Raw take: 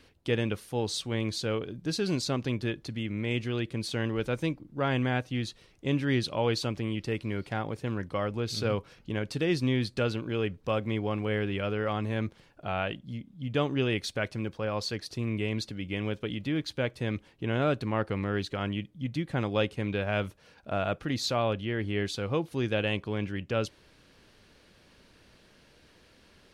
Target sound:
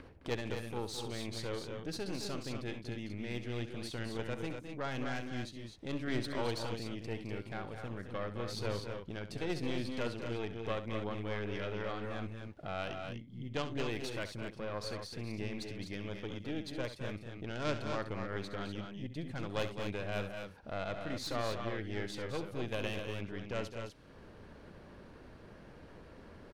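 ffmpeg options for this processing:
-filter_complex "[0:a]acrossover=split=1600[s0][s1];[s0]acompressor=mode=upward:threshold=0.0316:ratio=2.5[s2];[s1]volume=18.8,asoftclip=hard,volume=0.0531[s3];[s2][s3]amix=inputs=2:normalize=0,aeval=exprs='0.211*(cos(1*acos(clip(val(0)/0.211,-1,1)))-cos(1*PI/2))+0.0473*(cos(3*acos(clip(val(0)/0.211,-1,1)))-cos(3*PI/2))+0.0299*(cos(4*acos(clip(val(0)/0.211,-1,1)))-cos(4*PI/2))+0.0119*(cos(5*acos(clip(val(0)/0.211,-1,1)))-cos(5*PI/2))':c=same,aecho=1:1:67.06|212.8|247.8:0.251|0.355|0.447,volume=0.531"

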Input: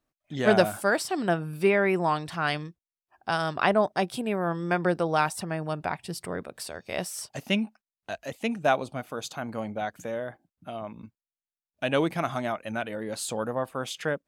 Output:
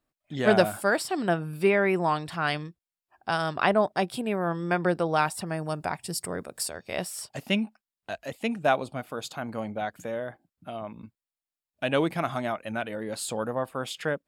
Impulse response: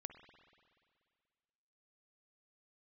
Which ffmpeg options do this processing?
-filter_complex "[0:a]asettb=1/sr,asplit=3[s0][s1][s2];[s0]atrim=end=5.464[s3];[s1]atrim=start=5.46:end=6.7,asetpts=PTS-STARTPTS,afade=t=in:d=0.004:c=qsin,afade=t=out:st=1.236:d=0.004:c=qsin,highshelf=f=4600:t=q:w=1.5:g=7.5[s4];[s2]atrim=start=6.696[s5];[s3][s4]acrossfade=d=0.004:c1=hsin:c2=qsin[s6];[s6][s5]acrossfade=d=0.004:c1=qsin:c2=hsin,bandreject=f=6100:w=8.4"

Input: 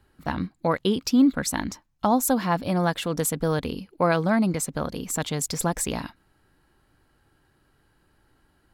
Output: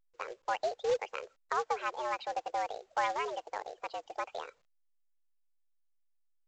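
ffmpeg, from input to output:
-af "asetrate=59535,aresample=44100,afftdn=nr=33:nf=-40,highpass=f=460:t=q:w=0.5412,highpass=f=460:t=q:w=1.307,lowpass=f=3400:t=q:w=0.5176,lowpass=f=3400:t=q:w=0.7071,lowpass=f=3400:t=q:w=1.932,afreqshift=120,equalizer=f=1700:w=0.51:g=-12,acrusher=bits=3:mode=log:mix=0:aa=0.000001" -ar 16000 -c:a pcm_alaw

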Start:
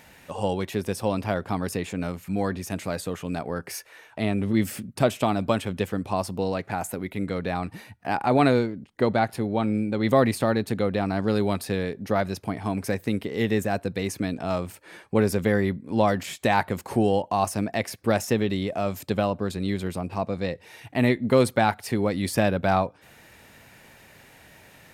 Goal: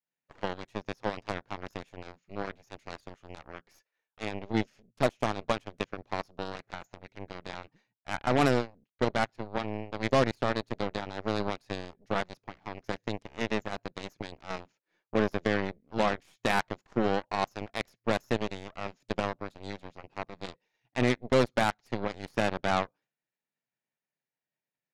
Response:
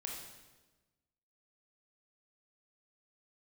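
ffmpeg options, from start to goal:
-af "afftfilt=real='re*between(b*sr/4096,110,7100)':imag='im*between(b*sr/4096,110,7100)':win_size=4096:overlap=0.75,agate=range=0.0224:threshold=0.0112:ratio=3:detection=peak,aeval=exprs='0.376*(cos(1*acos(clip(val(0)/0.376,-1,1)))-cos(1*PI/2))+0.0266*(cos(6*acos(clip(val(0)/0.376,-1,1)))-cos(6*PI/2))+0.0596*(cos(7*acos(clip(val(0)/0.376,-1,1)))-cos(7*PI/2))+0.00299*(cos(8*acos(clip(val(0)/0.376,-1,1)))-cos(8*PI/2))':c=same,volume=0.562"

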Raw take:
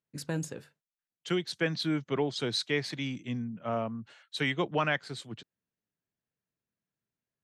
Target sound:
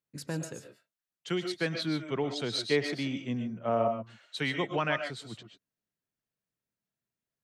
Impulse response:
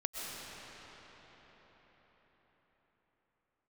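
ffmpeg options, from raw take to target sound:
-filter_complex "[0:a]asettb=1/sr,asplit=3[s0][s1][s2];[s0]atrim=end=2.714[s3];[s1]atrim=start=2.71:end=3.88,asetpts=PTS-STARTPTS,afade=t=in:d=0.004:c=qsin,afade=t=out:st=1.166:d=0.004:c=qsin,equalizer=f=500:w=0.66:g=7[s4];[s2]atrim=start=3.876[s5];[s3][s4]acrossfade=d=0.004:c1=hsin:c2=qsin[s6];[s6][s5]acrossfade=d=0.004:c1=qsin:c2=hsin[s7];[1:a]atrim=start_sample=2205,atrim=end_sample=6615[s8];[s7][s8]afir=irnorm=-1:irlink=0"

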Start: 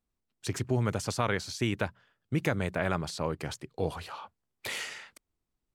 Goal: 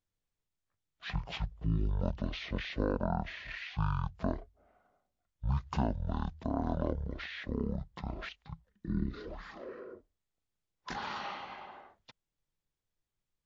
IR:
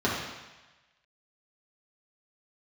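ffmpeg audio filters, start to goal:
-af "asetrate=18846,aresample=44100,volume=0.668"

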